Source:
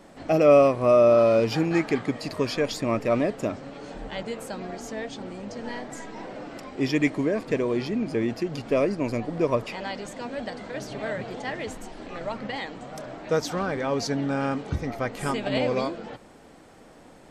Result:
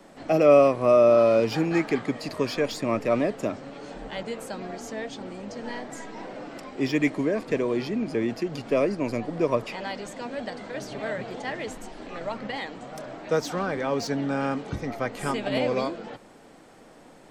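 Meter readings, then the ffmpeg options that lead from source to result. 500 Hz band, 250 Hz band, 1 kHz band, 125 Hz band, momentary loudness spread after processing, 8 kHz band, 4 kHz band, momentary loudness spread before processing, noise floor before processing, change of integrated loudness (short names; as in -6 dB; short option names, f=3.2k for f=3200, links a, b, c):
0.0 dB, -0.5 dB, 0.0 dB, -2.5 dB, 19 LU, -1.0 dB, -1.0 dB, 19 LU, -50 dBFS, -0.5 dB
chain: -filter_complex "[0:a]equalizer=f=62:w=0.99:g=-9,acrossover=split=190|710|2500[a][b][c][d];[d]asoftclip=type=tanh:threshold=-29.5dB[e];[a][b][c][e]amix=inputs=4:normalize=0"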